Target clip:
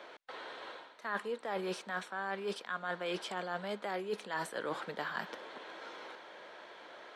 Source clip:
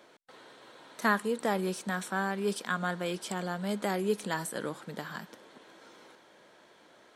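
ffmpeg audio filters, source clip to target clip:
-filter_complex "[0:a]acrossover=split=390 4500:gain=0.2 1 0.141[s0][s1][s2];[s0][s1][s2]amix=inputs=3:normalize=0,areverse,acompressor=threshold=0.00794:ratio=16,areverse,volume=2.66"

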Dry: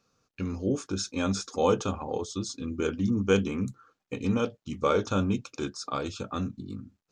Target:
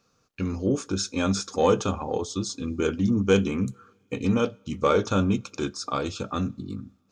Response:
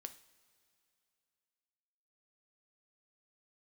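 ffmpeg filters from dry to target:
-filter_complex "[0:a]asoftclip=type=tanh:threshold=0.266,asplit=2[s0][s1];[1:a]atrim=start_sample=2205[s2];[s1][s2]afir=irnorm=-1:irlink=0,volume=0.473[s3];[s0][s3]amix=inputs=2:normalize=0,volume=1.26"

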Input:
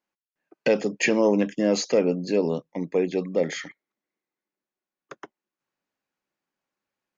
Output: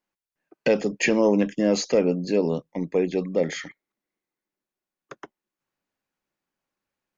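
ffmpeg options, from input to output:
-af "lowshelf=f=86:g=11"

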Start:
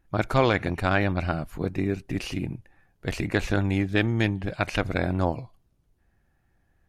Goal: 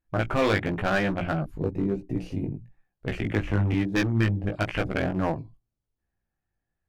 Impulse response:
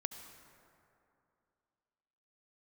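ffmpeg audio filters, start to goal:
-filter_complex "[0:a]bandreject=f=60:t=h:w=6,bandreject=f=120:t=h:w=6,bandreject=f=180:t=h:w=6,bandreject=f=240:t=h:w=6,bandreject=f=300:t=h:w=6,bandreject=f=360:t=h:w=6,afwtdn=0.0178,asettb=1/sr,asplit=3[s0][s1][s2];[s0]atrim=end=3.174[s3];[s1]atrim=start=3.17:end=3.73,asetpts=PTS-STARTPTS,afade=t=in:d=0.004:c=qsin,afade=t=out:st=0.556:d=0.004:c=qsin,acrossover=split=250[s4][s5];[s5]acompressor=threshold=0.0398:ratio=3[s6];[s4][s6]amix=inputs=2:normalize=0[s7];[s2]atrim=start=3.726[s8];[s3][s7]acrossfade=d=0.004:c1=hsin:c2=qsin[s9];[s9][s8]acrossfade=d=0.004:c1=qsin:c2=hsin,asoftclip=type=hard:threshold=0.126,flanger=delay=15.5:depth=4:speed=1,volume=1.68"

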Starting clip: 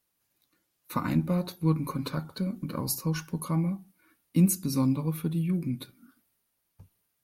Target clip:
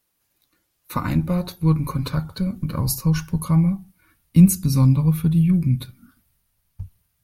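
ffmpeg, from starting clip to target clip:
-af "asubboost=boost=11.5:cutoff=97,volume=1.88"

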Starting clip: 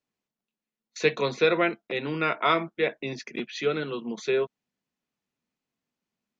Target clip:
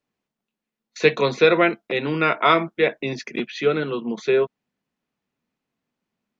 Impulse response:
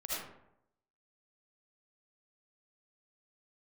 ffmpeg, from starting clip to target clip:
-af "asetnsamples=n=441:p=0,asendcmd='1.03 highshelf g -3.5;3.52 highshelf g -12',highshelf=f=4900:g=-10,volume=2.11"

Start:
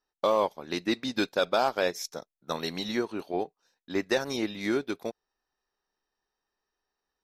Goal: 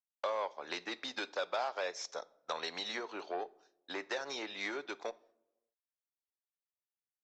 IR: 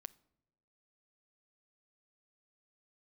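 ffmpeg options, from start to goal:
-filter_complex "[0:a]acrossover=split=390|3300[s0][s1][s2];[s2]crystalizer=i=2:c=0[s3];[s0][s1][s3]amix=inputs=3:normalize=0,agate=range=0.0224:threshold=0.00251:ratio=3:detection=peak,acompressor=threshold=0.02:ratio=4,aresample=16000,asoftclip=type=tanh:threshold=0.0335,aresample=44100,acrossover=split=460 3600:gain=0.0708 1 0.251[s4][s5][s6];[s4][s5][s6]amix=inputs=3:normalize=0[s7];[1:a]atrim=start_sample=2205[s8];[s7][s8]afir=irnorm=-1:irlink=0,volume=3.55"

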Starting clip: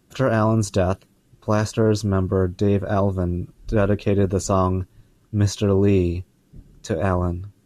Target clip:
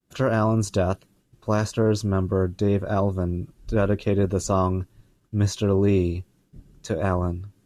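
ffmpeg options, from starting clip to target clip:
-af "agate=range=0.0224:threshold=0.00224:ratio=3:detection=peak,volume=0.75"

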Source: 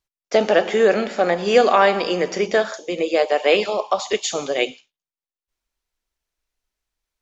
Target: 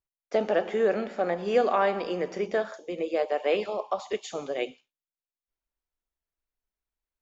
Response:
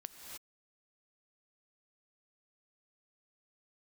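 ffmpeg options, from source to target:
-af "equalizer=f=6300:t=o:w=2.7:g=-9.5,volume=0.398"

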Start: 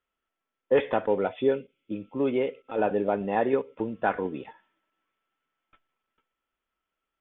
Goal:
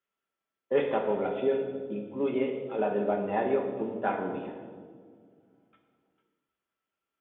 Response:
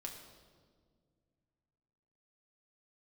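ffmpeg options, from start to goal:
-filter_complex "[0:a]highpass=91[s0];[1:a]atrim=start_sample=2205[s1];[s0][s1]afir=irnorm=-1:irlink=0"

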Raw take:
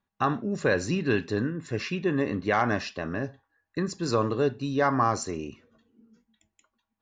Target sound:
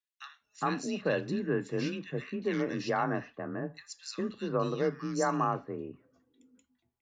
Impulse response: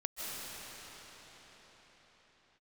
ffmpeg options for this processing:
-filter_complex "[0:a]acrossover=split=1900[s0][s1];[s0]adelay=410[s2];[s2][s1]amix=inputs=2:normalize=0,afreqshift=30,volume=0.562"

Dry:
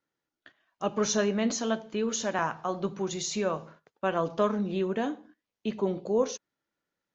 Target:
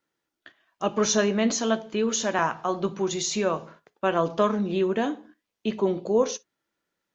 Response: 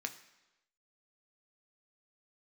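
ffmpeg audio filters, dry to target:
-filter_complex "[0:a]asplit=2[s0][s1];[1:a]atrim=start_sample=2205,atrim=end_sample=4410,asetrate=61740,aresample=44100[s2];[s1][s2]afir=irnorm=-1:irlink=0,volume=0.668[s3];[s0][s3]amix=inputs=2:normalize=0,volume=1.26"

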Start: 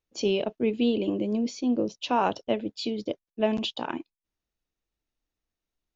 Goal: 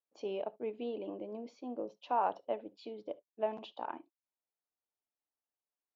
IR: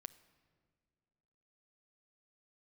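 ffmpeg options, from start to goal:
-filter_complex "[0:a]bandpass=f=810:t=q:w=1.5:csg=0[s0];[1:a]atrim=start_sample=2205,atrim=end_sample=3528[s1];[s0][s1]afir=irnorm=-1:irlink=0,volume=1.12"

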